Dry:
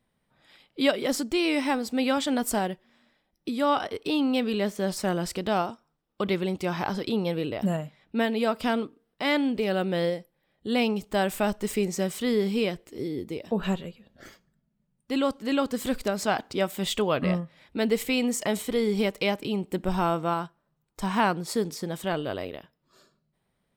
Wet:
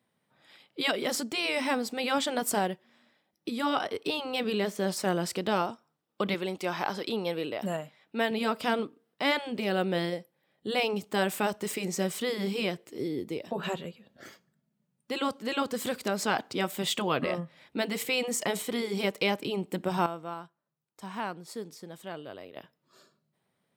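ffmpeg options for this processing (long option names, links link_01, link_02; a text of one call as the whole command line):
ffmpeg -i in.wav -filter_complex "[0:a]asettb=1/sr,asplit=3[link_01][link_02][link_03];[link_01]atrim=end=6.344[link_04];[link_02]atrim=start=6.34:end=8.31,asetpts=PTS-STARTPTS,afade=type=in:duration=0.004:curve=qsin,afade=type=out:start_time=1.966:duration=0.004:curve=qsin,lowshelf=frequency=220:gain=-11.5[link_05];[link_03]atrim=start=8.306[link_06];[link_04][link_05]acrossfade=duration=0.004:curve1=hsin:curve2=qsin[link_07];[link_07][link_06]acrossfade=duration=0.004:curve1=qsin:curve2=hsin,asplit=3[link_08][link_09][link_10];[link_08]atrim=end=20.062[link_11];[link_09]atrim=start=20.058:end=22.562,asetpts=PTS-STARTPTS,volume=-11dB[link_12];[link_10]atrim=start=22.558[link_13];[link_11][link_12]acrossfade=duration=0.004:curve1=hsin:curve2=hsin[link_14];[link_14][link_13]acrossfade=duration=0.004:curve1=hsin:curve2=hsin,afftfilt=real='re*lt(hypot(re,im),0.501)':imag='im*lt(hypot(re,im),0.501)':win_size=1024:overlap=0.75,highpass=frequency=100:width=0.5412,highpass=frequency=100:width=1.3066,bass=frequency=250:gain=-3,treble=frequency=4000:gain=0" out.wav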